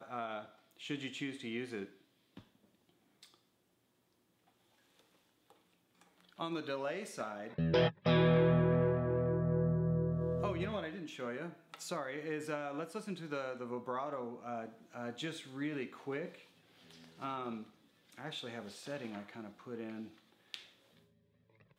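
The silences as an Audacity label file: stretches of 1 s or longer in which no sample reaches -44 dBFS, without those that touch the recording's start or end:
3.230000	6.390000	silence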